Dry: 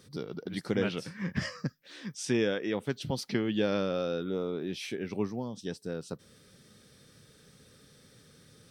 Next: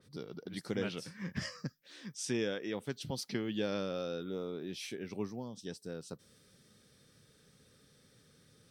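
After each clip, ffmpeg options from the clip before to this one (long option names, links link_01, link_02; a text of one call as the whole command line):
ffmpeg -i in.wav -af "adynamicequalizer=threshold=0.00251:dfrequency=3900:dqfactor=0.7:tfrequency=3900:tqfactor=0.7:attack=5:release=100:ratio=0.375:range=3:mode=boostabove:tftype=highshelf,volume=-6.5dB" out.wav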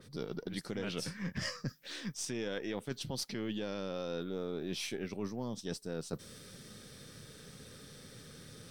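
ffmpeg -i in.wav -af "aeval=exprs='if(lt(val(0),0),0.708*val(0),val(0))':channel_layout=same,alimiter=level_in=4.5dB:limit=-24dB:level=0:latency=1,volume=-4.5dB,areverse,acompressor=threshold=-50dB:ratio=4,areverse,volume=13.5dB" out.wav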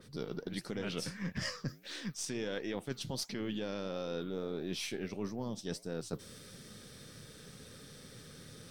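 ffmpeg -i in.wav -af "flanger=delay=3.1:depth=9.3:regen=-86:speed=1.5:shape=triangular,volume=4.5dB" out.wav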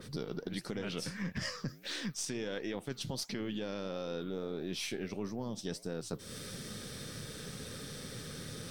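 ffmpeg -i in.wav -af "acompressor=threshold=-45dB:ratio=3,volume=8dB" out.wav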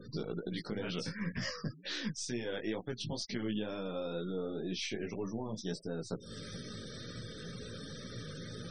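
ffmpeg -i in.wav -filter_complex "[0:a]flanger=delay=16.5:depth=2.5:speed=2.1,acrossover=split=7400[link_01][link_02];[link_02]acompressor=threshold=-60dB:ratio=4:attack=1:release=60[link_03];[link_01][link_03]amix=inputs=2:normalize=0,afftfilt=real='re*gte(hypot(re,im),0.00316)':imag='im*gte(hypot(re,im),0.00316)':win_size=1024:overlap=0.75,volume=3.5dB" out.wav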